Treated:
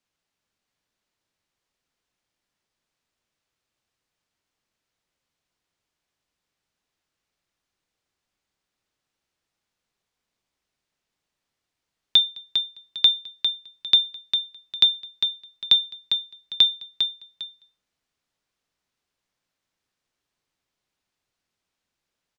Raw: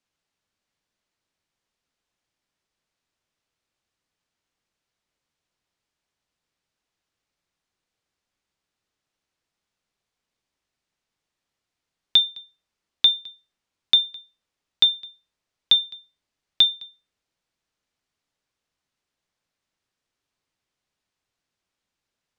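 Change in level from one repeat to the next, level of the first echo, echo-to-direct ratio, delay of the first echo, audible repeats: -11.5 dB, -7.0 dB, -6.5 dB, 402 ms, 2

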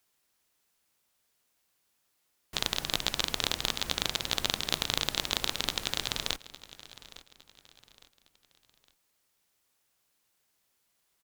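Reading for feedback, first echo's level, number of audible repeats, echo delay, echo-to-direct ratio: 37%, -18.0 dB, 2, 859 ms, -17.5 dB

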